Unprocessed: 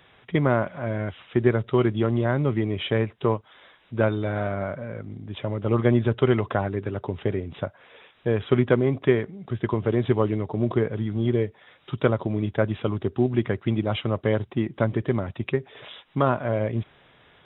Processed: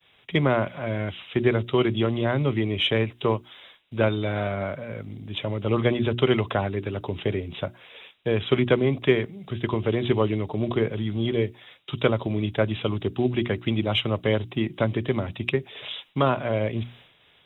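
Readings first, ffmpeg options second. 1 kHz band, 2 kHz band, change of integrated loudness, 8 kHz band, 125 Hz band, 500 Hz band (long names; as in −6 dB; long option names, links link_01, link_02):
0.0 dB, +2.0 dB, −0.5 dB, can't be measured, −1.5 dB, −0.5 dB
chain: -filter_complex "[0:a]agate=range=-33dB:threshold=-49dB:ratio=3:detection=peak,bandreject=frequency=60:width_type=h:width=6,bandreject=frequency=120:width_type=h:width=6,bandreject=frequency=180:width_type=h:width=6,bandreject=frequency=240:width_type=h:width=6,bandreject=frequency=300:width_type=h:width=6,bandreject=frequency=360:width_type=h:width=6,acrossover=split=310|1000[link_01][link_02][link_03];[link_03]aexciter=amount=2.8:drive=5.9:freq=2300[link_04];[link_01][link_02][link_04]amix=inputs=3:normalize=0"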